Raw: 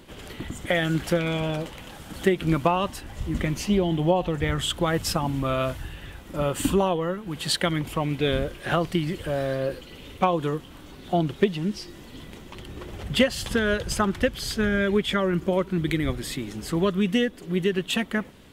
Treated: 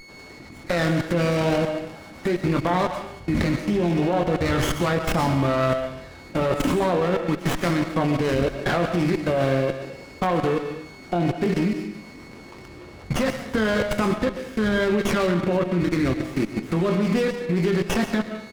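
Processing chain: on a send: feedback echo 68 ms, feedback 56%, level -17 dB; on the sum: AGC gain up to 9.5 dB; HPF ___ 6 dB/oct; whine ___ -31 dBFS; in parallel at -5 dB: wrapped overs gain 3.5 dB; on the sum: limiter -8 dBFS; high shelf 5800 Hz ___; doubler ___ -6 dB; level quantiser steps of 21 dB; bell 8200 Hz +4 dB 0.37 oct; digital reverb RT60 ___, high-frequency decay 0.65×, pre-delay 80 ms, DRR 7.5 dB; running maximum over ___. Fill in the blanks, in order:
130 Hz, 2200 Hz, -10.5 dB, 23 ms, 0.67 s, 9 samples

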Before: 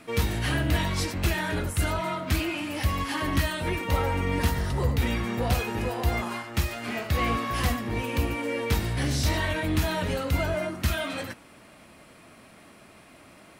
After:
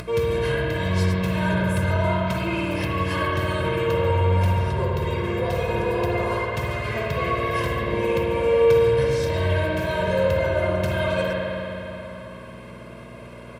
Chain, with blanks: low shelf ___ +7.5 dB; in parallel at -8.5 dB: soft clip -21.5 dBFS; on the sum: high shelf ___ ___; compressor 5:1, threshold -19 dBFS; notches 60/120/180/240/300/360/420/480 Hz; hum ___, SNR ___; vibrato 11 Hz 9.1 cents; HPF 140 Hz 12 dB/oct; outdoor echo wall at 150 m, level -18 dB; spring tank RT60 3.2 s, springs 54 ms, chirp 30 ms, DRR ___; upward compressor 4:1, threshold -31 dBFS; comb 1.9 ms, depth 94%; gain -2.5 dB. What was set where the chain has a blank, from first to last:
420 Hz, 3800 Hz, -7 dB, 60 Hz, 11 dB, -2.5 dB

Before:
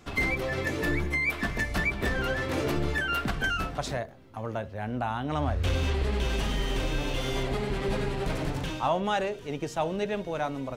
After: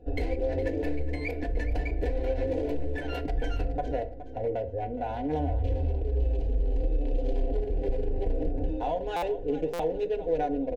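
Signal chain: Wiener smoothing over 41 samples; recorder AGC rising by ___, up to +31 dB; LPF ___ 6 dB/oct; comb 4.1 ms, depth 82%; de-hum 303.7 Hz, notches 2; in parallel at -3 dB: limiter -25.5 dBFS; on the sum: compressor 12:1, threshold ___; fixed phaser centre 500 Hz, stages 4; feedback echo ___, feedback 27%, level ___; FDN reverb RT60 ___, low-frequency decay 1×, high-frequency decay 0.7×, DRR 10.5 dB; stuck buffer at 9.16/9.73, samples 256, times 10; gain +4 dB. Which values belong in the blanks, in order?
6.7 dB/s, 1000 Hz, -26 dBFS, 0.418 s, -14 dB, 0.53 s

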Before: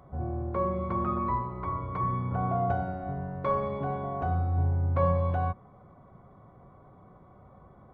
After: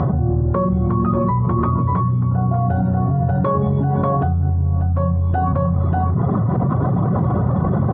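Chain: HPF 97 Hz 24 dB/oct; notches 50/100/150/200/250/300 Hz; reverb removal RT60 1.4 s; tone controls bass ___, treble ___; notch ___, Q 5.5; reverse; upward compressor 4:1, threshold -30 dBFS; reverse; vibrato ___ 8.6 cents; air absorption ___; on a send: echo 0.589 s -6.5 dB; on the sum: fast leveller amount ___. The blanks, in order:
+14 dB, -2 dB, 2200 Hz, 0.79 Hz, 240 m, 100%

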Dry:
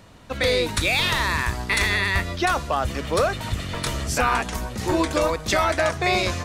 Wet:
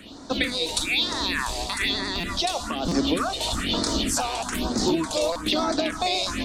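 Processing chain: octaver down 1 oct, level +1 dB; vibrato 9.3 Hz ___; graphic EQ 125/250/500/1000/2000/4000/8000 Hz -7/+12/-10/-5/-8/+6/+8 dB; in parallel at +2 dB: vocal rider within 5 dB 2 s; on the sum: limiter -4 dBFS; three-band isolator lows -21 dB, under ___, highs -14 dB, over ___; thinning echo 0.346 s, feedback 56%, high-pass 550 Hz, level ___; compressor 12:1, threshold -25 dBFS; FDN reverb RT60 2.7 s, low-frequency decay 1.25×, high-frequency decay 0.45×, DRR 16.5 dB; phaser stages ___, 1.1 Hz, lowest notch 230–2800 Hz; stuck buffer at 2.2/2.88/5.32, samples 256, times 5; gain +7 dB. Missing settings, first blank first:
35 cents, 380 Hz, 3500 Hz, -22.5 dB, 4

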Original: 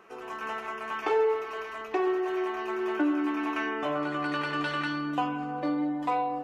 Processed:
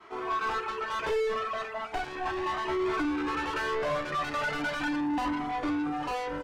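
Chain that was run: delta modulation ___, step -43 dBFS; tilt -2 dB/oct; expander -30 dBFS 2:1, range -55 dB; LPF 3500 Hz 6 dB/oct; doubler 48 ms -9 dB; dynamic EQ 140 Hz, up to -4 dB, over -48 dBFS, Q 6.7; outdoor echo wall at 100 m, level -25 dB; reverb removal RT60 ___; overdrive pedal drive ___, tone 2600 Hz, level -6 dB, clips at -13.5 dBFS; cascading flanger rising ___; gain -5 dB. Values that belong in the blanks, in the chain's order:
64 kbps, 1.1 s, 34 dB, 0.37 Hz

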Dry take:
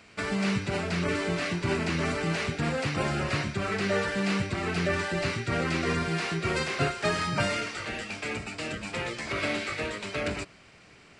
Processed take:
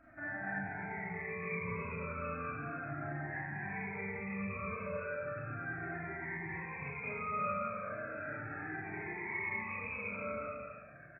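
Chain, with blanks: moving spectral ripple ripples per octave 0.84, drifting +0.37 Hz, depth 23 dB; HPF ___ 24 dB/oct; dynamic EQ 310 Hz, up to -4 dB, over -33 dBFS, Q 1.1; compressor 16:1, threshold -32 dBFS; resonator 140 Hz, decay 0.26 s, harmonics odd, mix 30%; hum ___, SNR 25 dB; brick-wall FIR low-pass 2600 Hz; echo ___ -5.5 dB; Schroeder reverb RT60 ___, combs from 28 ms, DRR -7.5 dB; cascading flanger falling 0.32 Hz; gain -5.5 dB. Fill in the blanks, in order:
90 Hz, 60 Hz, 0.228 s, 1.1 s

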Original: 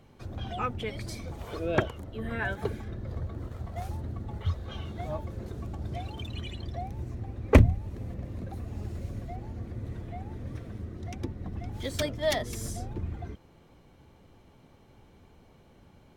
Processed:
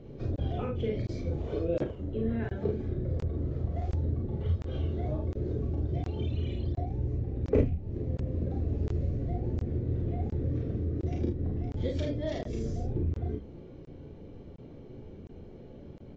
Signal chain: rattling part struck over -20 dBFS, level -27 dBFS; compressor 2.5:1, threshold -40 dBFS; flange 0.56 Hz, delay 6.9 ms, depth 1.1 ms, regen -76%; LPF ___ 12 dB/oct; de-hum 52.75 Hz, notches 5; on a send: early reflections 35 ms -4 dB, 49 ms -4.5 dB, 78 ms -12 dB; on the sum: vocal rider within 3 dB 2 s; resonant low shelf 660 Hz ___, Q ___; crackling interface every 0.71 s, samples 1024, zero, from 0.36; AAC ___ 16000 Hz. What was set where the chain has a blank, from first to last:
5000 Hz, +12 dB, 1.5, 32 kbps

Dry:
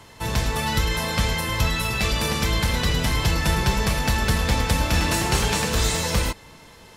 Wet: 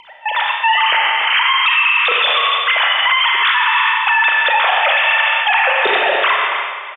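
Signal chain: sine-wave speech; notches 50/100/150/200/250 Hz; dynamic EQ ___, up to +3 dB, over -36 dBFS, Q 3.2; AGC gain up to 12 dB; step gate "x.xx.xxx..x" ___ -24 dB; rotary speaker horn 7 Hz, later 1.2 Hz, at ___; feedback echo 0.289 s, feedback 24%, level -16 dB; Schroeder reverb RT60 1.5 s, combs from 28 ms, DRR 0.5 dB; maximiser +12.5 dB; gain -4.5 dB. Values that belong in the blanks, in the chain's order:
1200 Hz, 118 bpm, 2.96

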